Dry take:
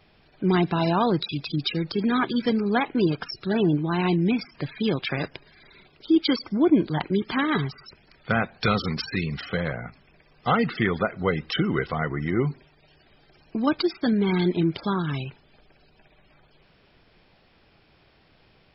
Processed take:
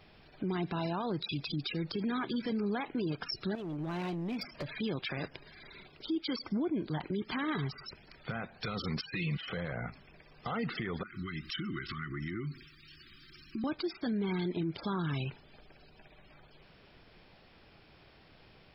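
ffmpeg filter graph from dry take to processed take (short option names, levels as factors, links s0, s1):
-filter_complex "[0:a]asettb=1/sr,asplit=3[s0][s1][s2];[s0]atrim=end=3.554[s3];[s1]atrim=start=3.55:end=4.77,asetpts=PTS-STARTPTS,afade=t=in:d=0.004:c=qsin,afade=t=out:st=1.216:d=0.004:c=qsin,equalizer=f=590:w=5:g=12,acompressor=threshold=0.0282:ratio=12:attack=3.2:release=140:knee=1:detection=peak,asoftclip=type=hard:threshold=0.0251[s4];[s2]atrim=start=4.766[s5];[s3][s4]acrossfade=d=0.004:c1=hsin:c2=qsin[s6];[s6][s5]acrossfade=d=0.004:c1=qsin:c2=hsin,asettb=1/sr,asplit=3[s7][s8][s9];[s7]atrim=end=9.014[s10];[s8]atrim=start=9.01:end=9.48,asetpts=PTS-STARTPTS,afade=t=in:d=0.004:c=qsin,afade=t=out:st=0.466:d=0.004:c=qsin,agate=range=0.2:threshold=0.0224:ratio=16:release=100:detection=peak,lowpass=f=3100:t=q:w=3.7,aecho=1:1:6.1:0.96,atrim=end_sample=20727[s11];[s9]atrim=start=9.476[s12];[s10][s11]acrossfade=d=0.004:c1=hsin:c2=qsin[s13];[s13][s12]acrossfade=d=0.004:c1=qsin:c2=hsin,asettb=1/sr,asplit=3[s14][s15][s16];[s14]atrim=end=11.034[s17];[s15]atrim=start=11.03:end=13.64,asetpts=PTS-STARTPTS,afade=t=in:d=0.004:c=qsin,afade=t=out:st=2.606:d=0.004:c=qsin,highshelf=f=3100:g=11,acompressor=threshold=0.02:ratio=6:attack=3.2:release=140:knee=1:detection=peak,asuperstop=centerf=650:order=20:qfactor=0.88[s18];[s16]atrim=start=13.636[s19];[s17][s18]acrossfade=d=0.004:c1=hsin:c2=qsin[s20];[s20][s19]acrossfade=d=0.004:c1=qsin:c2=hsin,acompressor=threshold=0.0282:ratio=2.5,alimiter=level_in=1.33:limit=0.0631:level=0:latency=1:release=29,volume=0.75"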